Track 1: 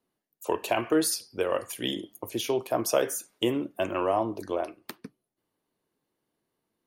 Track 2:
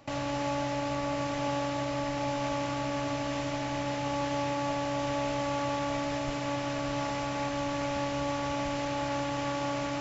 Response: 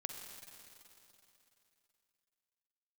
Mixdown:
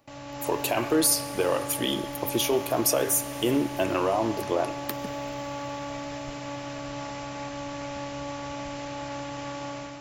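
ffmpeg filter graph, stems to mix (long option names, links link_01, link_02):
-filter_complex "[0:a]alimiter=limit=-19.5dB:level=0:latency=1:release=57,volume=-3.5dB,asplit=2[link_01][link_02];[link_02]volume=-8.5dB[link_03];[1:a]volume=-9.5dB[link_04];[2:a]atrim=start_sample=2205[link_05];[link_03][link_05]afir=irnorm=-1:irlink=0[link_06];[link_01][link_04][link_06]amix=inputs=3:normalize=0,highshelf=frequency=9100:gain=8.5,dynaudnorm=framelen=140:gausssize=5:maxgain=6dB"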